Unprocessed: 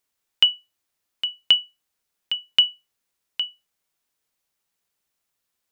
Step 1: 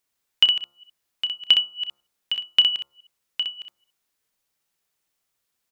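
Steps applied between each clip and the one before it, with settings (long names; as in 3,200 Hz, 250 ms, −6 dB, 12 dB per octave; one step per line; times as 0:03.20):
delay that plays each chunk backwards 167 ms, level −13 dB
hum removal 69.73 Hz, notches 20
on a send: ambience of single reflections 31 ms −15.5 dB, 63 ms −5.5 dB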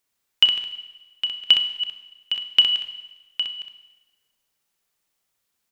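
four-comb reverb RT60 1.2 s, combs from 32 ms, DRR 10.5 dB
level +1 dB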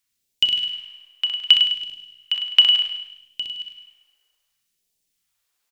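all-pass phaser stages 2, 0.66 Hz, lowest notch 130–1,300 Hz
repeating echo 103 ms, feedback 41%, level −9 dB
level +1 dB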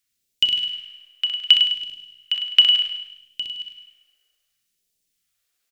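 parametric band 950 Hz −13.5 dB 0.34 octaves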